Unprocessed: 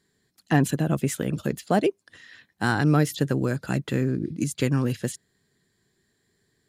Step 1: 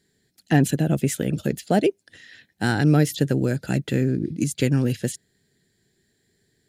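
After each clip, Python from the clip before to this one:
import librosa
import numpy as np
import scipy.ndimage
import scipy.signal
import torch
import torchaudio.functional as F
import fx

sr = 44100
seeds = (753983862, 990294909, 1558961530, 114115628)

y = fx.peak_eq(x, sr, hz=1100.0, db=-14.5, octaves=0.48)
y = y * 10.0 ** (3.0 / 20.0)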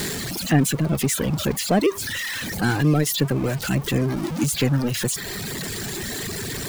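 y = x + 0.5 * 10.0 ** (-19.0 / 20.0) * np.sign(x)
y = fx.dereverb_blind(y, sr, rt60_s=1.2)
y = y * 10.0 ** (-1.5 / 20.0)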